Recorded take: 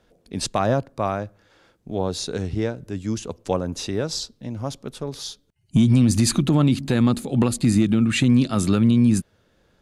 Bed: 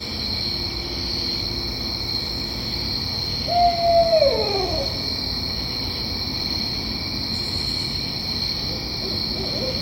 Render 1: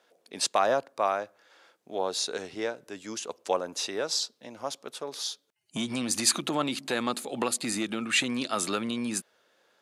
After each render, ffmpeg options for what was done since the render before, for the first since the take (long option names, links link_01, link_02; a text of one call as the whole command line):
ffmpeg -i in.wav -af "highpass=560" out.wav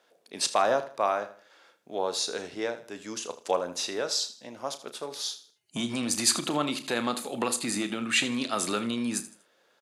ffmpeg -i in.wav -filter_complex "[0:a]asplit=2[link_01][link_02];[link_02]adelay=34,volume=-12dB[link_03];[link_01][link_03]amix=inputs=2:normalize=0,aecho=1:1:79|158|237:0.188|0.0603|0.0193" out.wav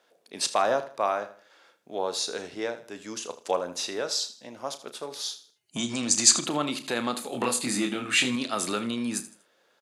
ffmpeg -i in.wav -filter_complex "[0:a]asettb=1/sr,asplit=3[link_01][link_02][link_03];[link_01]atrim=end=5.784[link_04];[link_02]atrim=start=5.78:end=6.46,asetpts=PTS-STARTPTS,afade=type=in:duration=0.004:curve=qsin,afade=type=out:start_time=0.676:duration=0.004:curve=qsin,lowpass=frequency=7000:width_type=q:width=3.2[link_05];[link_03]atrim=start=6.456[link_06];[link_04][link_05]acrossfade=duration=0.004:curve1=hsin:curve2=qsin[link_07];[link_07][link_06]acrossfade=duration=0.004:curve1=qsin:curve2=hsin,asettb=1/sr,asplit=3[link_08][link_09][link_10];[link_08]atrim=end=7.304[link_11];[link_09]atrim=start=7.3:end=8.36,asetpts=PTS-STARTPTS,afade=type=in:duration=0.004:curve=qsin,afade=type=out:start_time=1.056:duration=0.004:curve=qsin,asplit=2[link_12][link_13];[link_13]adelay=24,volume=-2.5dB[link_14];[link_12][link_14]amix=inputs=2:normalize=0,atrim=end_sample=46746[link_15];[link_10]atrim=start=8.356[link_16];[link_11][link_15]acrossfade=duration=0.004:curve1=hsin:curve2=qsin[link_17];[link_17][link_16]acrossfade=duration=0.004:curve1=qsin:curve2=hsin" out.wav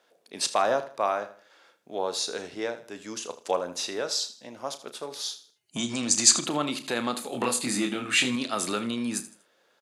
ffmpeg -i in.wav -af anull out.wav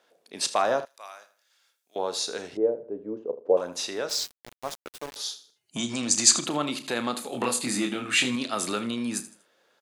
ffmpeg -i in.wav -filter_complex "[0:a]asettb=1/sr,asplit=3[link_01][link_02][link_03];[link_01]atrim=end=0.854[link_04];[link_02]atrim=start=0.85:end=1.96,asetpts=PTS-STARTPTS,afade=type=in:duration=0.004:curve=qsin,afade=type=out:start_time=1.106:duration=0.004:curve=qsin,aderivative[link_05];[link_03]atrim=start=1.956[link_06];[link_04][link_05]acrossfade=duration=0.004:curve1=hsin:curve2=qsin[link_07];[link_07][link_06]acrossfade=duration=0.004:curve1=qsin:curve2=hsin,asettb=1/sr,asplit=3[link_08][link_09][link_10];[link_08]atrim=end=2.574[link_11];[link_09]atrim=start=2.57:end=3.57,asetpts=PTS-STARTPTS,afade=type=in:duration=0.004:curve=qsin,afade=type=out:start_time=0.996:duration=0.004:curve=qsin,lowpass=frequency=470:width_type=q:width=3.1[link_12];[link_10]atrim=start=3.566[link_13];[link_11][link_12]acrossfade=duration=0.004:curve1=hsin:curve2=qsin[link_14];[link_14][link_13]acrossfade=duration=0.004:curve1=qsin:curve2=hsin,asettb=1/sr,asplit=3[link_15][link_16][link_17];[link_15]atrim=end=4.094[link_18];[link_16]atrim=start=4.09:end=5.16,asetpts=PTS-STARTPTS,afade=type=in:duration=0.004:curve=qsin,afade=type=out:start_time=1.066:duration=0.004:curve=qsin,aeval=exprs='val(0)*gte(abs(val(0)),0.02)':channel_layout=same[link_19];[link_17]atrim=start=5.156[link_20];[link_18][link_19]acrossfade=duration=0.004:curve1=hsin:curve2=qsin[link_21];[link_21][link_20]acrossfade=duration=0.004:curve1=qsin:curve2=hsin" out.wav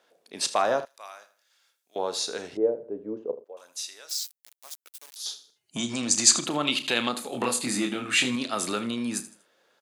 ffmpeg -i in.wav -filter_complex "[0:a]asettb=1/sr,asplit=3[link_01][link_02][link_03];[link_01]atrim=end=3.444[link_04];[link_02]atrim=start=3.44:end=5.26,asetpts=PTS-STARTPTS,afade=type=in:duration=0.004:curve=qsin,afade=type=out:start_time=1.816:duration=0.004:curve=qsin,aderivative[link_05];[link_03]atrim=start=5.256[link_06];[link_04][link_05]acrossfade=duration=0.004:curve1=hsin:curve2=qsin[link_07];[link_07][link_06]acrossfade=duration=0.004:curve1=qsin:curve2=hsin,asettb=1/sr,asplit=3[link_08][link_09][link_10];[link_08]atrim=end=6.654[link_11];[link_09]atrim=start=6.65:end=7.09,asetpts=PTS-STARTPTS,afade=type=in:duration=0.004:curve=qsin,afade=type=out:start_time=0.436:duration=0.004:curve=qsin,equalizer=frequency=3000:width=1.7:gain=13[link_12];[link_10]atrim=start=7.086[link_13];[link_11][link_12]acrossfade=duration=0.004:curve1=hsin:curve2=qsin[link_14];[link_14][link_13]acrossfade=duration=0.004:curve1=qsin:curve2=hsin" out.wav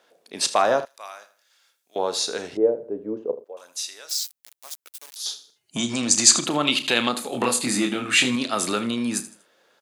ffmpeg -i in.wav -af "volume=4.5dB,alimiter=limit=-1dB:level=0:latency=1" out.wav